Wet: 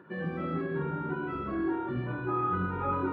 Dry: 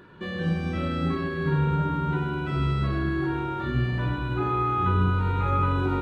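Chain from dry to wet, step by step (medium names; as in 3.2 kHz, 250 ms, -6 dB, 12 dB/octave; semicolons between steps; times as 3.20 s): three-band isolator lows -19 dB, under 150 Hz, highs -20 dB, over 2.1 kHz; plain phase-vocoder stretch 0.52×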